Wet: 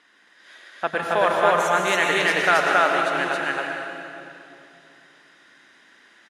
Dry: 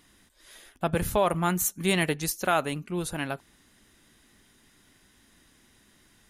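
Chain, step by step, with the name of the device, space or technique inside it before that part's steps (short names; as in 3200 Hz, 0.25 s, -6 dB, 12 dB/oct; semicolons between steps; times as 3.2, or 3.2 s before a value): station announcement (BPF 430–4400 Hz; bell 1600 Hz +8 dB 0.59 oct; loudspeakers at several distances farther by 54 m -10 dB, 94 m 0 dB; reverb RT60 2.7 s, pre-delay 93 ms, DRR 1.5 dB); gain +2.5 dB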